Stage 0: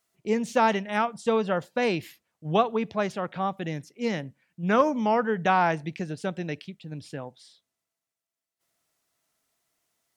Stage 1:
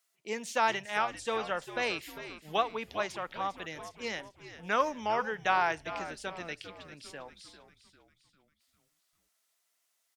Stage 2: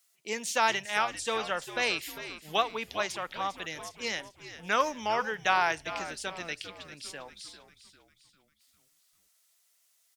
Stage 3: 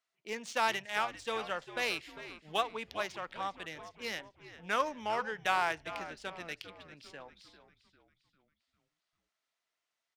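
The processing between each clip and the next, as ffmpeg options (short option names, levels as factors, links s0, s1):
-filter_complex "[0:a]highpass=f=1400:p=1,asplit=6[s0][s1][s2][s3][s4][s5];[s1]adelay=399,afreqshift=-90,volume=0.237[s6];[s2]adelay=798,afreqshift=-180,volume=0.114[s7];[s3]adelay=1197,afreqshift=-270,volume=0.0543[s8];[s4]adelay=1596,afreqshift=-360,volume=0.0263[s9];[s5]adelay=1995,afreqshift=-450,volume=0.0126[s10];[s0][s6][s7][s8][s9][s10]amix=inputs=6:normalize=0"
-af "highshelf=f=2500:g=9"
-af "adynamicsmooth=sensitivity=5.5:basefreq=2800,volume=0.596"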